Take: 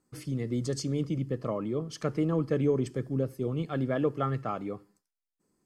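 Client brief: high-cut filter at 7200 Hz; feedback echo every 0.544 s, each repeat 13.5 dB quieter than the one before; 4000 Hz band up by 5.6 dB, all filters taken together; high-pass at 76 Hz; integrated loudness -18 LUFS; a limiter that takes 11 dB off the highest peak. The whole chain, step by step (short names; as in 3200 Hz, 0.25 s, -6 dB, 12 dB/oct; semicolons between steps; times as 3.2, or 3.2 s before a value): HPF 76 Hz; LPF 7200 Hz; bell 4000 Hz +8 dB; limiter -25.5 dBFS; feedback echo 0.544 s, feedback 21%, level -13.5 dB; gain +17 dB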